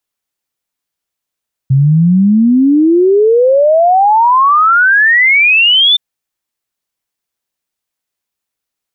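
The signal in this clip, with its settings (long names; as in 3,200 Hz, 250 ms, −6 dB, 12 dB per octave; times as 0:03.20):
exponential sine sweep 130 Hz → 3,600 Hz 4.27 s −5 dBFS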